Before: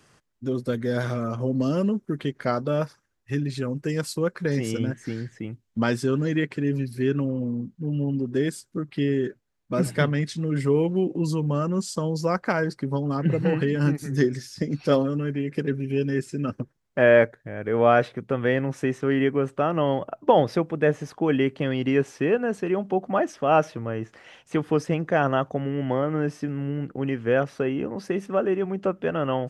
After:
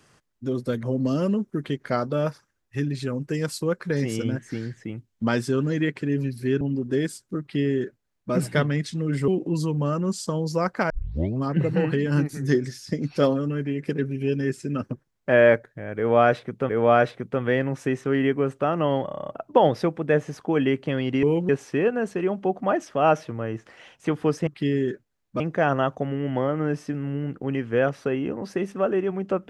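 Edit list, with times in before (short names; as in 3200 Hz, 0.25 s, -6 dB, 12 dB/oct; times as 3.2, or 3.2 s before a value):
0.83–1.38 cut
7.16–8.04 cut
8.83–9.76 copy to 24.94
10.71–10.97 move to 21.96
12.59 tape start 0.53 s
17.66–18.38 loop, 2 plays
20.02 stutter 0.03 s, 9 plays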